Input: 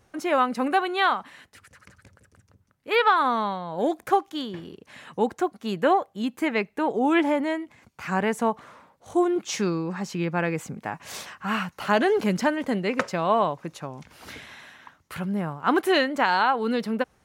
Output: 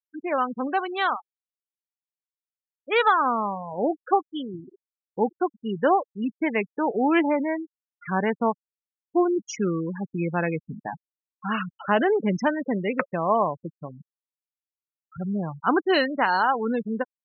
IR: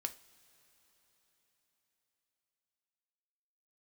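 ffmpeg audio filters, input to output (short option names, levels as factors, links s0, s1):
-af "afftfilt=real='re*gte(hypot(re,im),0.0708)':imag='im*gte(hypot(re,im),0.0708)':win_size=1024:overlap=0.75,dynaudnorm=f=990:g=3:m=1.5,volume=0.708"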